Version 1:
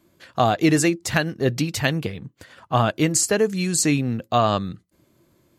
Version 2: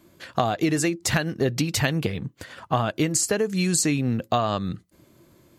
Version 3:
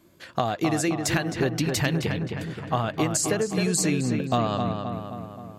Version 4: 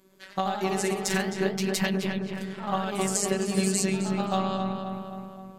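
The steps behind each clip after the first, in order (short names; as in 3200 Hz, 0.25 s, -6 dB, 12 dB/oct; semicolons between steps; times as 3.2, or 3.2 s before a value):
compressor 10:1, threshold -24 dBFS, peak gain reduction 11.5 dB; gain +5 dB
darkening echo 0.263 s, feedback 60%, low-pass 3000 Hz, level -5 dB; gain -2.5 dB
robotiser 190 Hz; echoes that change speed 0.102 s, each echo +1 st, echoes 3, each echo -6 dB; gain -1 dB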